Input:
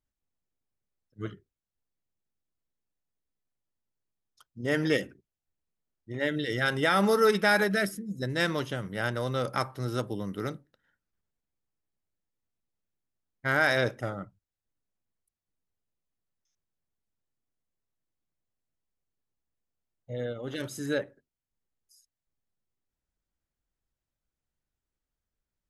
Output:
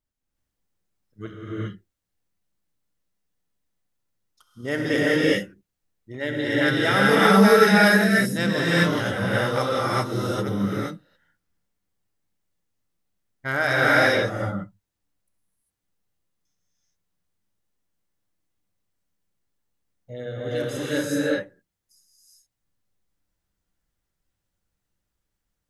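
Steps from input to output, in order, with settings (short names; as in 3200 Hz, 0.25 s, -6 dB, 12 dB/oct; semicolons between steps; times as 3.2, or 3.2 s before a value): non-linear reverb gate 0.43 s rising, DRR -7.5 dB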